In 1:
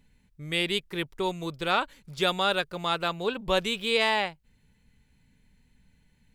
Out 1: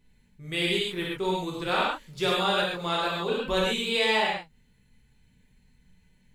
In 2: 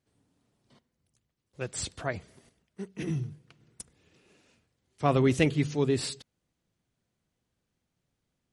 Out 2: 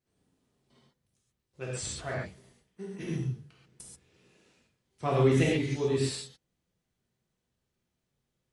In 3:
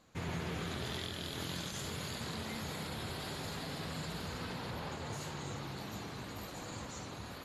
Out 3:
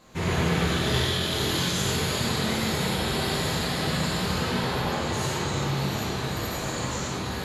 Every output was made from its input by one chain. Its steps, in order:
reverb whose tail is shaped and stops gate 160 ms flat, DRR −5 dB
normalise the peak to −12 dBFS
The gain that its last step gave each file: −5.0, −7.5, +8.5 decibels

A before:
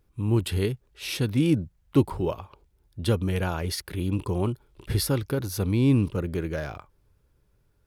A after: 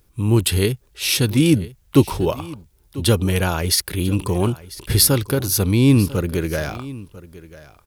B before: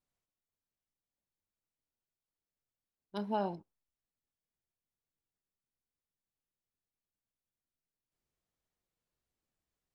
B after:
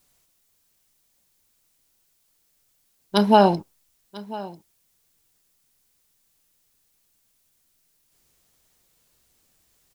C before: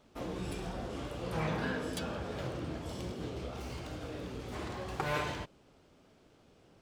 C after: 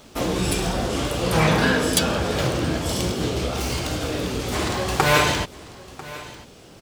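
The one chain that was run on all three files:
high-shelf EQ 3,600 Hz +10.5 dB
single-tap delay 995 ms −18.5 dB
normalise the peak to −1.5 dBFS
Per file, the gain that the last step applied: +6.5, +19.0, +15.0 decibels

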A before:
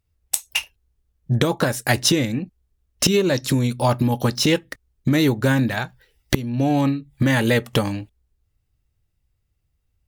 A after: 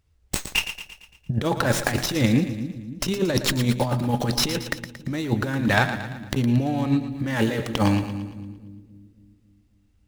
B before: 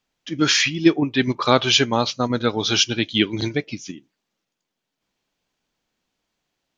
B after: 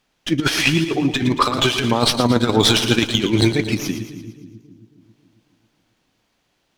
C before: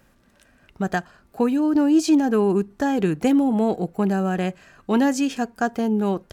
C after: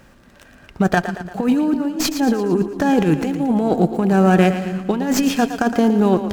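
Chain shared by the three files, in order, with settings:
compressor whose output falls as the input rises −22 dBFS, ratio −0.5
echo with a time of its own for lows and highs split 320 Hz, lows 272 ms, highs 114 ms, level −10 dB
windowed peak hold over 3 samples
normalise the peak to −1.5 dBFS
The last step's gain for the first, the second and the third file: +1.5, +6.0, +6.5 decibels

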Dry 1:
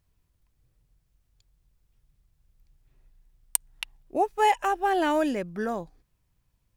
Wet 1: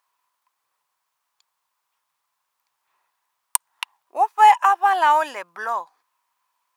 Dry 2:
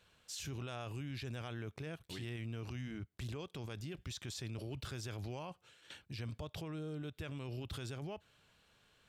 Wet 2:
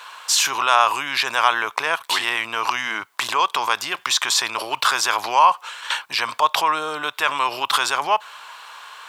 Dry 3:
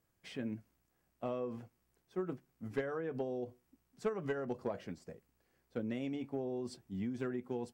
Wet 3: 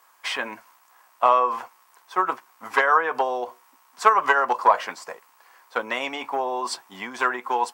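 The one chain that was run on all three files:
high-pass with resonance 1,000 Hz, resonance Q 4.9
normalise the peak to −2 dBFS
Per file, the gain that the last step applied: +4.0, +27.0, +21.5 decibels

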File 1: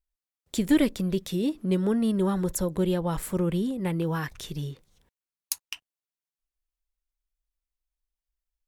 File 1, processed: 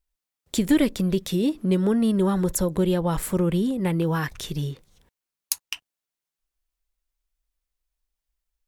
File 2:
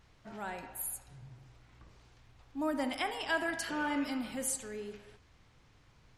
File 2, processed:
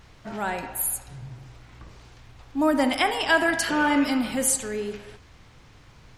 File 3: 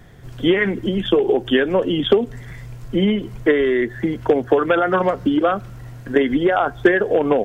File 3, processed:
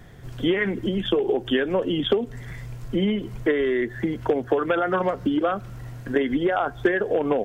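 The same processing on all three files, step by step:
downward compressor 1.5 to 1, threshold −25 dBFS
loudness normalisation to −24 LKFS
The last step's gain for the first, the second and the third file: +5.0, +12.0, −1.0 decibels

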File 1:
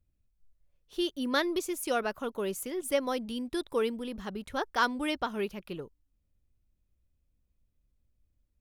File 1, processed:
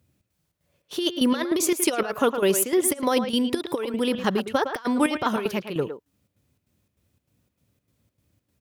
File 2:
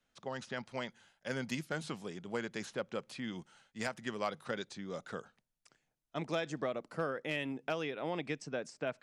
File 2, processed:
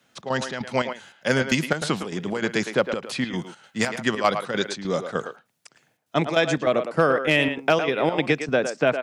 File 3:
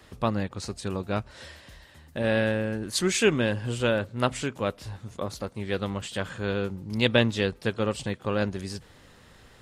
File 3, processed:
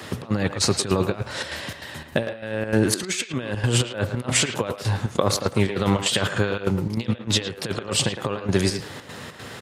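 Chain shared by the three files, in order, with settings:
dynamic equaliser 210 Hz, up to −4 dB, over −40 dBFS, Q 1.1
compressor whose output falls as the input rises −33 dBFS, ratio −0.5
high-pass filter 96 Hz 24 dB per octave
square-wave tremolo 3.3 Hz, depth 65%, duty 70%
far-end echo of a speakerphone 110 ms, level −8 dB
loudness normalisation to −24 LKFS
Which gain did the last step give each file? +13.0, +17.0, +12.0 decibels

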